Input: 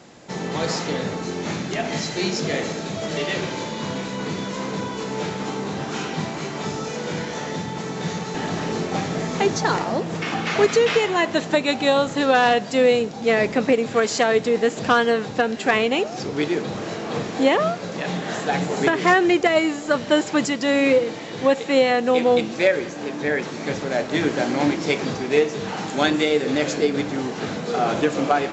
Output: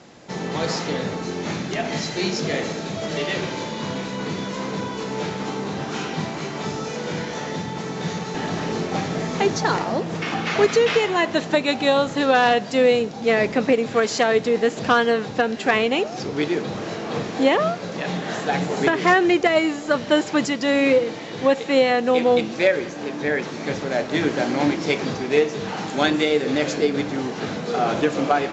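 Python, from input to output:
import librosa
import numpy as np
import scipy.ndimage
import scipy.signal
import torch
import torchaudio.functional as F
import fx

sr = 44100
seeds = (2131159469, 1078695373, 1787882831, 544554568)

y = scipy.signal.sosfilt(scipy.signal.butter(4, 7100.0, 'lowpass', fs=sr, output='sos'), x)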